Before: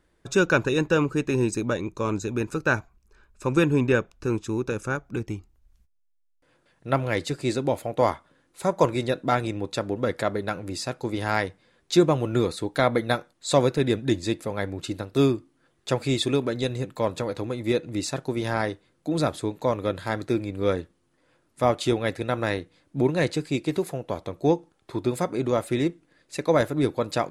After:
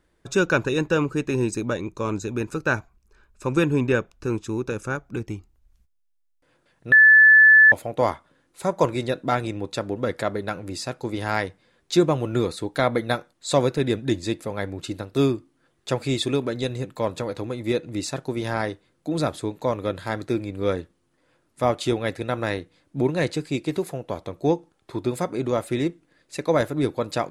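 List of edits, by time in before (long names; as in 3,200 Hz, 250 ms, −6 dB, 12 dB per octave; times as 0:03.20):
0:06.92–0:07.72: beep over 1,740 Hz −8.5 dBFS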